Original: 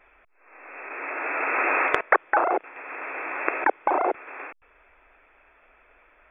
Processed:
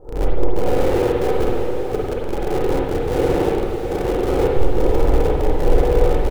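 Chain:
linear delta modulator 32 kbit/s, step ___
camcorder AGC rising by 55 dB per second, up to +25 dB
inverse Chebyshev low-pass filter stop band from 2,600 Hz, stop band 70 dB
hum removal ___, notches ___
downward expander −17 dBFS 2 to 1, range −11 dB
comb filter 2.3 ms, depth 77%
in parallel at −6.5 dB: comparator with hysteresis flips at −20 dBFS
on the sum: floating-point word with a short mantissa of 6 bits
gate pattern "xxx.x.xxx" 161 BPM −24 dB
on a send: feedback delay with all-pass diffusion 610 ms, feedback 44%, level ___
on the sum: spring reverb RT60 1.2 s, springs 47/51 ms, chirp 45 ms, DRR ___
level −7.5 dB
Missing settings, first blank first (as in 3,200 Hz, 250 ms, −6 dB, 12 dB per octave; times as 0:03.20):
−16 dBFS, 102.4 Hz, 6, −7.5 dB, −2.5 dB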